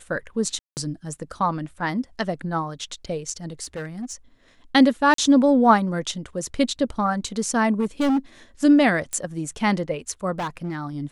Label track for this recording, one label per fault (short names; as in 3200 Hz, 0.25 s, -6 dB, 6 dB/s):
0.590000	0.770000	gap 0.179 s
3.630000	4.140000	clipped -27 dBFS
5.140000	5.180000	gap 43 ms
7.790000	8.180000	clipped -17.5 dBFS
9.130000	9.130000	pop -15 dBFS
10.380000	10.760000	clipped -24 dBFS